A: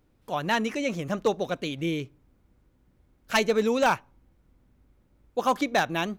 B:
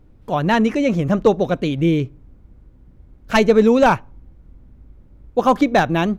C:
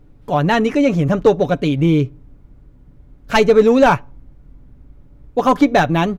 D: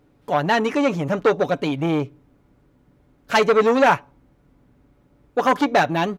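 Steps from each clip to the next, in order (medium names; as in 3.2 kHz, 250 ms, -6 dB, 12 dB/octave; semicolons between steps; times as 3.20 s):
tilt EQ -2.5 dB/octave; trim +7.5 dB
comb 7 ms, depth 40%; in parallel at -6.5 dB: hard clipper -10.5 dBFS, distortion -12 dB; on the sum: trim -1.5 dB
high-pass 370 Hz 6 dB/octave; transformer saturation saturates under 1 kHz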